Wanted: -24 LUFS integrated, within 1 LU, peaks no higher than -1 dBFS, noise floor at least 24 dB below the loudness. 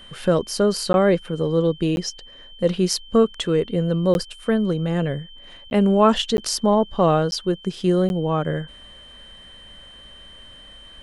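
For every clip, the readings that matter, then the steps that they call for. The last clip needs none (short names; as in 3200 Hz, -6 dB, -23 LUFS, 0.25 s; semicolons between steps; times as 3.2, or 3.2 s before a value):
dropouts 7; longest dropout 11 ms; steady tone 3100 Hz; tone level -43 dBFS; loudness -21.0 LUFS; peak -4.5 dBFS; loudness target -24.0 LUFS
-> interpolate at 0.93/1.96/4.14/5.7/6.37/7.31/8.09, 11 ms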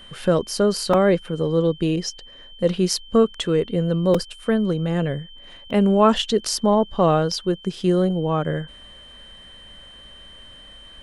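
dropouts 0; steady tone 3100 Hz; tone level -43 dBFS
-> notch 3100 Hz, Q 30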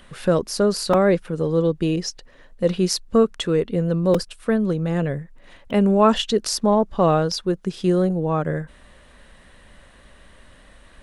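steady tone none; loudness -21.0 LUFS; peak -4.5 dBFS; loudness target -24.0 LUFS
-> gain -3 dB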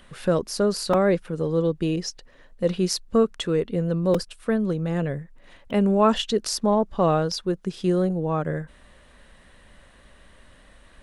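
loudness -24.0 LUFS; peak -7.5 dBFS; noise floor -53 dBFS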